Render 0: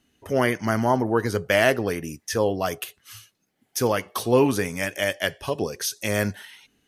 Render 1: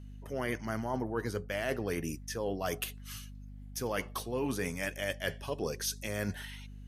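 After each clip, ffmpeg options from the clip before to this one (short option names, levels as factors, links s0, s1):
-af "areverse,acompressor=threshold=0.0398:ratio=10,areverse,aeval=exprs='val(0)+0.00708*(sin(2*PI*50*n/s)+sin(2*PI*2*50*n/s)/2+sin(2*PI*3*50*n/s)/3+sin(2*PI*4*50*n/s)/4+sin(2*PI*5*50*n/s)/5)':c=same,volume=0.75"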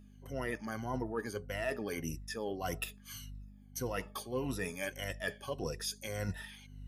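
-af "afftfilt=real='re*pow(10,15/40*sin(2*PI*(2*log(max(b,1)*sr/1024/100)/log(2)-(-1.7)*(pts-256)/sr)))':imag='im*pow(10,15/40*sin(2*PI*(2*log(max(b,1)*sr/1024/100)/log(2)-(-1.7)*(pts-256)/sr)))':win_size=1024:overlap=0.75,volume=0.531"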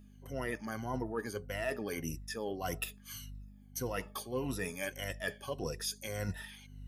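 -af "highshelf=f=11000:g=4.5"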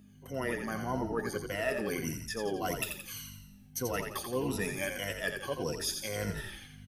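-filter_complex "[0:a]highpass=110,asplit=2[s0][s1];[s1]asplit=6[s2][s3][s4][s5][s6][s7];[s2]adelay=86,afreqshift=-46,volume=0.501[s8];[s3]adelay=172,afreqshift=-92,volume=0.251[s9];[s4]adelay=258,afreqshift=-138,volume=0.126[s10];[s5]adelay=344,afreqshift=-184,volume=0.0624[s11];[s6]adelay=430,afreqshift=-230,volume=0.0313[s12];[s7]adelay=516,afreqshift=-276,volume=0.0157[s13];[s8][s9][s10][s11][s12][s13]amix=inputs=6:normalize=0[s14];[s0][s14]amix=inputs=2:normalize=0,volume=1.41"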